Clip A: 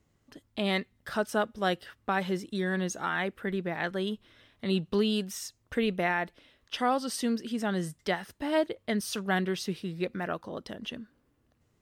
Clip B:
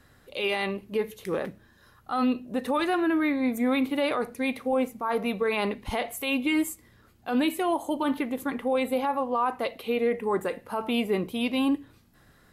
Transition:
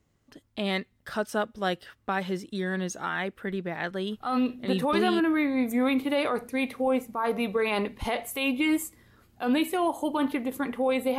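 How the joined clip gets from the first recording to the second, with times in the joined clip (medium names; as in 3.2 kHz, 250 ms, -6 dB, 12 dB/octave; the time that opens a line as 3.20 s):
clip A
4.66 s: go over to clip B from 2.52 s, crossfade 1.08 s logarithmic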